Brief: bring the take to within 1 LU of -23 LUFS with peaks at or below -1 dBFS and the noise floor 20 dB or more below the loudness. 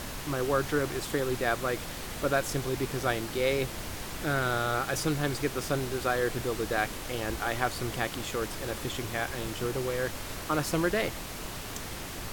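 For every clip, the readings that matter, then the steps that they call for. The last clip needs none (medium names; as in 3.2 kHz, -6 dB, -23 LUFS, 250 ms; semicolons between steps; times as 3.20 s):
noise floor -39 dBFS; noise floor target -51 dBFS; loudness -31.0 LUFS; peak level -11.5 dBFS; loudness target -23.0 LUFS
-> noise print and reduce 12 dB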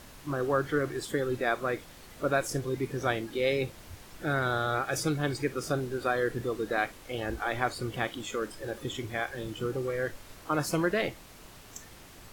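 noise floor -51 dBFS; noise floor target -52 dBFS
-> noise print and reduce 6 dB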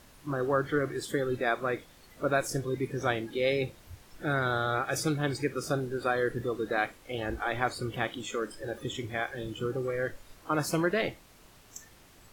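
noise floor -57 dBFS; loudness -31.5 LUFS; peak level -12.0 dBFS; loudness target -23.0 LUFS
-> trim +8.5 dB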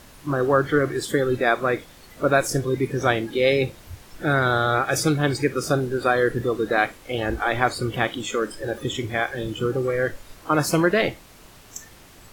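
loudness -23.0 LUFS; peak level -3.5 dBFS; noise floor -48 dBFS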